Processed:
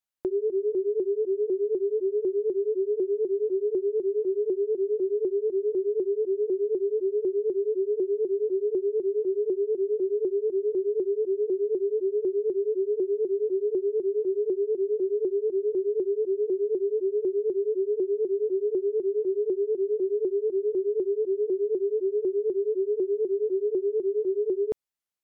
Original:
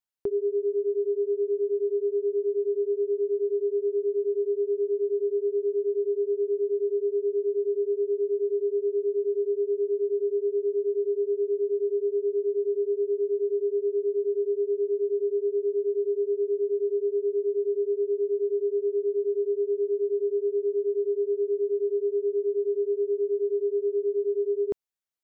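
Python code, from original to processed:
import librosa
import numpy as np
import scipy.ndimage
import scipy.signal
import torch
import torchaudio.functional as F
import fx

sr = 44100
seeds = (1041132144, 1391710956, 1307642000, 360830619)

y = fx.vibrato_shape(x, sr, shape='saw_up', rate_hz=4.0, depth_cents=160.0)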